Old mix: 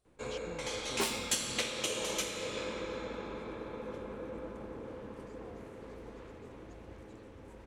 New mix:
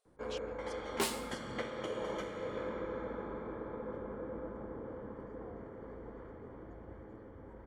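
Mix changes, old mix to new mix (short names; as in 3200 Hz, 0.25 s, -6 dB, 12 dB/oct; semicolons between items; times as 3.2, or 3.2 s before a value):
speech: add brick-wall FIR high-pass 400 Hz; first sound: add polynomial smoothing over 41 samples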